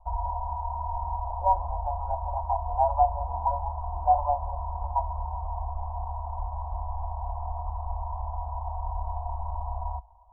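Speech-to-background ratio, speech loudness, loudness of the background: 5.5 dB, -29.0 LUFS, -34.5 LUFS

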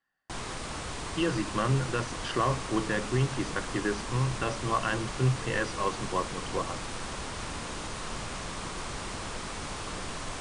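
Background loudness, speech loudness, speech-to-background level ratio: -37.0 LUFS, -31.0 LUFS, 6.0 dB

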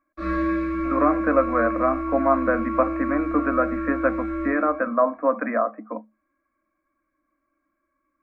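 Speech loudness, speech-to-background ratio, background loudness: -23.5 LUFS, 3.5 dB, -27.0 LUFS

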